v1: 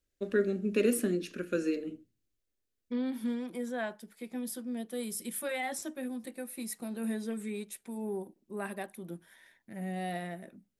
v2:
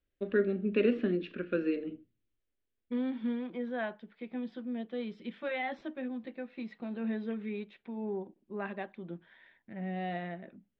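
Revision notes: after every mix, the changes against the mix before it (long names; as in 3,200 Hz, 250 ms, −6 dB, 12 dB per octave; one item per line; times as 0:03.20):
master: add Butterworth low-pass 3,500 Hz 36 dB per octave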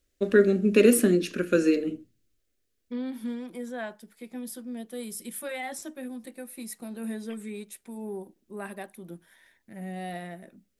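first voice +9.0 dB
master: remove Butterworth low-pass 3,500 Hz 36 dB per octave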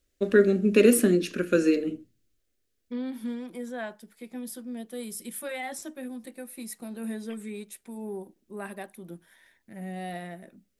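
nothing changed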